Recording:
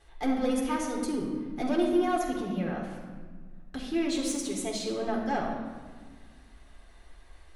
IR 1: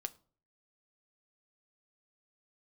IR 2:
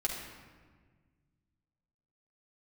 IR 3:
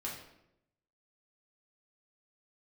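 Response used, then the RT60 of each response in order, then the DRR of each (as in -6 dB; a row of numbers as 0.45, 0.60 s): 2; 0.45, 1.5, 0.85 s; 9.0, -2.0, -4.5 dB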